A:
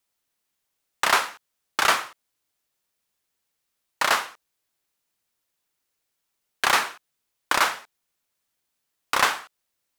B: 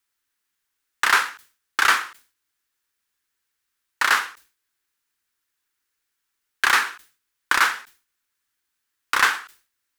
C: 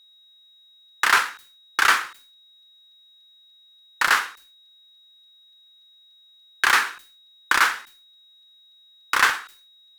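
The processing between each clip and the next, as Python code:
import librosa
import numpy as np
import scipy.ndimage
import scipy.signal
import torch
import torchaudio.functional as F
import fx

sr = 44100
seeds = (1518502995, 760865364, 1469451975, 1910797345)

y1 = fx.graphic_eq_15(x, sr, hz=(160, 630, 1600), db=(-11, -11, 7))
y1 = fx.sustainer(y1, sr, db_per_s=150.0)
y2 = y1 + 10.0 ** (-52.0 / 20.0) * np.sin(2.0 * np.pi * 3800.0 * np.arange(len(y1)) / sr)
y2 = fx.buffer_crackle(y2, sr, first_s=0.88, period_s=0.29, block=256, kind='repeat')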